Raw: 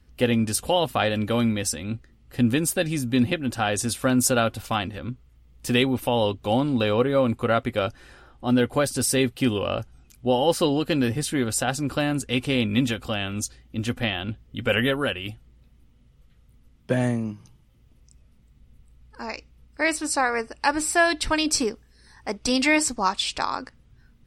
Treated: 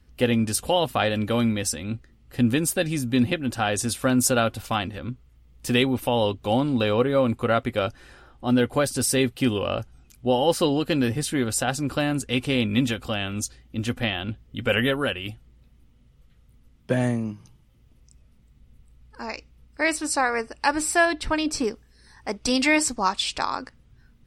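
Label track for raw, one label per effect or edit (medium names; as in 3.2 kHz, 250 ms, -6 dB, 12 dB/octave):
21.050000	21.640000	treble shelf 2.9 kHz -9 dB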